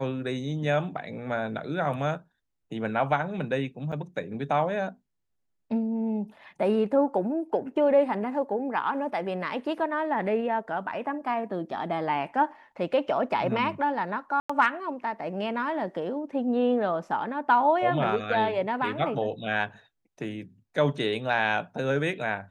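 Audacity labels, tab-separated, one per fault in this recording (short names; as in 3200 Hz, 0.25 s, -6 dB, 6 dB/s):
3.920000	3.930000	gap 6.4 ms
14.400000	14.490000	gap 95 ms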